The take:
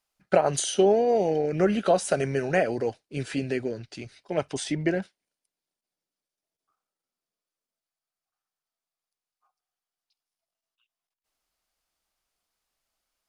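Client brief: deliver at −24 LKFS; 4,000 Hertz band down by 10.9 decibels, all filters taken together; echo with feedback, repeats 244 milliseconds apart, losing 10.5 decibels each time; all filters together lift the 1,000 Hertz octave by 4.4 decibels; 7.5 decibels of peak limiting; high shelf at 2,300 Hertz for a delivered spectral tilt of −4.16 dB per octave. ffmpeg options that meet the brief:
ffmpeg -i in.wav -af "equalizer=frequency=1000:width_type=o:gain=9,highshelf=frequency=2300:gain=-8,equalizer=frequency=4000:width_type=o:gain=-8.5,alimiter=limit=-13dB:level=0:latency=1,aecho=1:1:244|488|732:0.299|0.0896|0.0269,volume=2dB" out.wav

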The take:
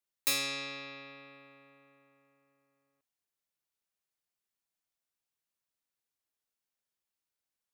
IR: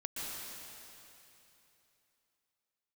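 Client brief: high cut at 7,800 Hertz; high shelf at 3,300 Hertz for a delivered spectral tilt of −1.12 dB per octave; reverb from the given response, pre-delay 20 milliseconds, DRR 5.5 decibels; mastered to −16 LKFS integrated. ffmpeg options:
-filter_complex "[0:a]lowpass=7800,highshelf=frequency=3300:gain=7.5,asplit=2[link_01][link_02];[1:a]atrim=start_sample=2205,adelay=20[link_03];[link_02][link_03]afir=irnorm=-1:irlink=0,volume=-7.5dB[link_04];[link_01][link_04]amix=inputs=2:normalize=0,volume=15.5dB"

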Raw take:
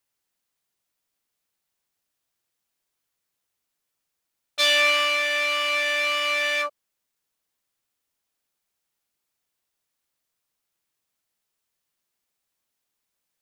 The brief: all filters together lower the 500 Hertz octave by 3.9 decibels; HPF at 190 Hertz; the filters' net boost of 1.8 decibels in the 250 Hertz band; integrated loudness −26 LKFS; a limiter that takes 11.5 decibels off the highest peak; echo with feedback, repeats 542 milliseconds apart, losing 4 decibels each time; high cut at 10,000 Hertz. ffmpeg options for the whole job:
ffmpeg -i in.wav -af "highpass=190,lowpass=10000,equalizer=frequency=250:width_type=o:gain=5,equalizer=frequency=500:width_type=o:gain=-5.5,alimiter=limit=-19dB:level=0:latency=1,aecho=1:1:542|1084|1626|2168|2710|3252|3794|4336|4878:0.631|0.398|0.25|0.158|0.0994|0.0626|0.0394|0.0249|0.0157,volume=1dB" out.wav

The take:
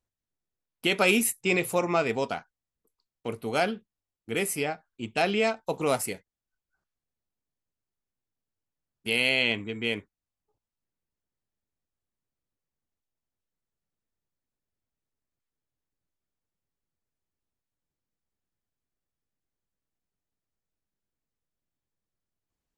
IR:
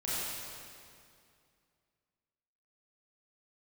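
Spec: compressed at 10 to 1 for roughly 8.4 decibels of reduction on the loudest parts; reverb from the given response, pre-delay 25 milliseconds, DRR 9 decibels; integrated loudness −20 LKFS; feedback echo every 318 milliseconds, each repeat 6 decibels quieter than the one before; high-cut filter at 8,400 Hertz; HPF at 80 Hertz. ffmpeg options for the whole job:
-filter_complex "[0:a]highpass=80,lowpass=8400,acompressor=threshold=-27dB:ratio=10,aecho=1:1:318|636|954|1272|1590|1908:0.501|0.251|0.125|0.0626|0.0313|0.0157,asplit=2[link_01][link_02];[1:a]atrim=start_sample=2205,adelay=25[link_03];[link_02][link_03]afir=irnorm=-1:irlink=0,volume=-15dB[link_04];[link_01][link_04]amix=inputs=2:normalize=0,volume=13dB"

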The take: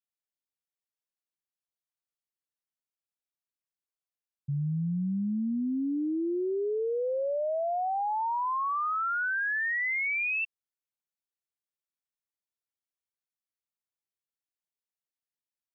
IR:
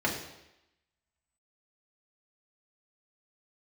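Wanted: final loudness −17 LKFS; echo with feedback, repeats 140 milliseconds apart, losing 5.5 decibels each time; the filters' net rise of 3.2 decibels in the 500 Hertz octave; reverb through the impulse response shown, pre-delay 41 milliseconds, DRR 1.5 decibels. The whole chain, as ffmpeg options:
-filter_complex "[0:a]equalizer=frequency=500:width_type=o:gain=4,aecho=1:1:140|280|420|560|700|840|980:0.531|0.281|0.149|0.079|0.0419|0.0222|0.0118,asplit=2[link_01][link_02];[1:a]atrim=start_sample=2205,adelay=41[link_03];[link_02][link_03]afir=irnorm=-1:irlink=0,volume=-12dB[link_04];[link_01][link_04]amix=inputs=2:normalize=0,volume=7.5dB"

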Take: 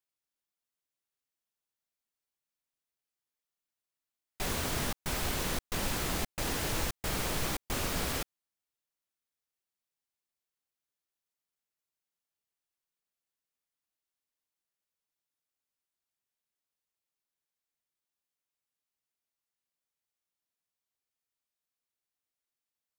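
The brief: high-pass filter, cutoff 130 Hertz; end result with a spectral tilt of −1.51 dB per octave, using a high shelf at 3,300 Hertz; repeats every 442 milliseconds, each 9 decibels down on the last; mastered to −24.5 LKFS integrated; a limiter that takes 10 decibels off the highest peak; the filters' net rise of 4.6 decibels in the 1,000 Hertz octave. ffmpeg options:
ffmpeg -i in.wav -af "highpass=130,equalizer=frequency=1000:width_type=o:gain=5,highshelf=frequency=3300:gain=7.5,alimiter=level_in=3dB:limit=-24dB:level=0:latency=1,volume=-3dB,aecho=1:1:442|884|1326|1768:0.355|0.124|0.0435|0.0152,volume=11dB" out.wav

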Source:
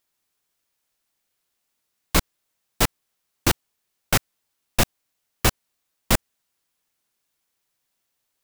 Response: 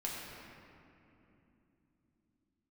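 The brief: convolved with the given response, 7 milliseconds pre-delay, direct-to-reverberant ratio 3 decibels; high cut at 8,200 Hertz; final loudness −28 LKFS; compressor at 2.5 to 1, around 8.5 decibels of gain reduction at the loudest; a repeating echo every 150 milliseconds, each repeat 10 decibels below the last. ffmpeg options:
-filter_complex "[0:a]lowpass=8200,acompressor=threshold=-27dB:ratio=2.5,aecho=1:1:150|300|450|600:0.316|0.101|0.0324|0.0104,asplit=2[link_01][link_02];[1:a]atrim=start_sample=2205,adelay=7[link_03];[link_02][link_03]afir=irnorm=-1:irlink=0,volume=-5.5dB[link_04];[link_01][link_04]amix=inputs=2:normalize=0,volume=5dB"

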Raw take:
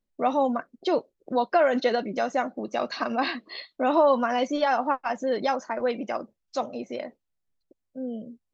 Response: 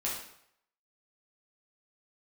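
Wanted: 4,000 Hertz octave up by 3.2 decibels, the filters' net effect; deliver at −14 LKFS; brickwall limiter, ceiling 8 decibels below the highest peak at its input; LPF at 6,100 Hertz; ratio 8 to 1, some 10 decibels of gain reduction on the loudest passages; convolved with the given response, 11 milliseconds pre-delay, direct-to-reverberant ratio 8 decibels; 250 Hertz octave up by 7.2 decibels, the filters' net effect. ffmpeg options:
-filter_complex "[0:a]lowpass=6100,equalizer=frequency=250:width_type=o:gain=8,equalizer=frequency=4000:width_type=o:gain=4.5,acompressor=threshold=-25dB:ratio=8,alimiter=limit=-24dB:level=0:latency=1,asplit=2[link_01][link_02];[1:a]atrim=start_sample=2205,adelay=11[link_03];[link_02][link_03]afir=irnorm=-1:irlink=0,volume=-12.5dB[link_04];[link_01][link_04]amix=inputs=2:normalize=0,volume=19dB"

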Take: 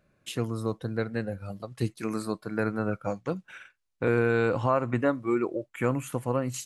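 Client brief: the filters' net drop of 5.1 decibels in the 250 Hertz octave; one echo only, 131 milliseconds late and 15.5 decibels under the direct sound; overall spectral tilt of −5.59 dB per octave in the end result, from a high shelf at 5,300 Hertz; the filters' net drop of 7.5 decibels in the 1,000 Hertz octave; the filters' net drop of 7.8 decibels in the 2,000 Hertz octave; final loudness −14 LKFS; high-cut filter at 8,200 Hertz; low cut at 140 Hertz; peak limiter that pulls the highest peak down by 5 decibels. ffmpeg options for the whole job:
ffmpeg -i in.wav -af "highpass=140,lowpass=8200,equalizer=frequency=250:width_type=o:gain=-5.5,equalizer=frequency=1000:width_type=o:gain=-7,equalizer=frequency=2000:width_type=o:gain=-8.5,highshelf=frequency=5300:gain=4.5,alimiter=limit=-22.5dB:level=0:latency=1,aecho=1:1:131:0.168,volume=21.5dB" out.wav

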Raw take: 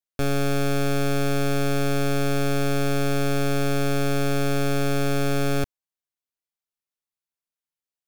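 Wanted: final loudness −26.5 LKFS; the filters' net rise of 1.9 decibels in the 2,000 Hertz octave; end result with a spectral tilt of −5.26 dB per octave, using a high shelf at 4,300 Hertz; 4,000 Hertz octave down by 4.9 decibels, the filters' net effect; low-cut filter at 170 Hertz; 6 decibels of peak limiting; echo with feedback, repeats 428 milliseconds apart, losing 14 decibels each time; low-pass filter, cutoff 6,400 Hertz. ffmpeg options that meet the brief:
ffmpeg -i in.wav -af "highpass=170,lowpass=6400,equalizer=frequency=2000:width_type=o:gain=5,equalizer=frequency=4000:width_type=o:gain=-3,highshelf=frequency=4300:gain=-7.5,alimiter=limit=-20.5dB:level=0:latency=1,aecho=1:1:428|856:0.2|0.0399,volume=5dB" out.wav

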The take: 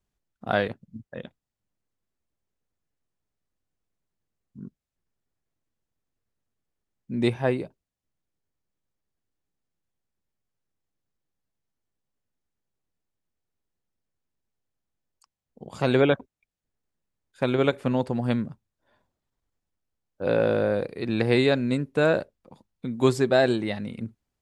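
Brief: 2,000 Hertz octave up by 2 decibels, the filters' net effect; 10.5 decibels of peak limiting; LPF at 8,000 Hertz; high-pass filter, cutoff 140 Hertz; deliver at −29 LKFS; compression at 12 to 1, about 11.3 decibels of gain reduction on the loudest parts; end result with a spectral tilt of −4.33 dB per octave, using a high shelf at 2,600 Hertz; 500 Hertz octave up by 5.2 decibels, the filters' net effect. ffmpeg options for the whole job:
ffmpeg -i in.wav -af "highpass=140,lowpass=8000,equalizer=frequency=500:width_type=o:gain=6.5,equalizer=frequency=2000:width_type=o:gain=5.5,highshelf=frequency=2600:gain=-7.5,acompressor=threshold=-23dB:ratio=12,volume=2.5dB,alimiter=limit=-17dB:level=0:latency=1" out.wav

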